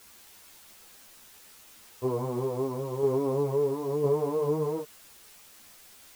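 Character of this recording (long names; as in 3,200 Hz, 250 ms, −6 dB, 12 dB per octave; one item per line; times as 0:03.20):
tremolo saw down 0.99 Hz, depth 50%
a quantiser's noise floor 10 bits, dither triangular
a shimmering, thickened sound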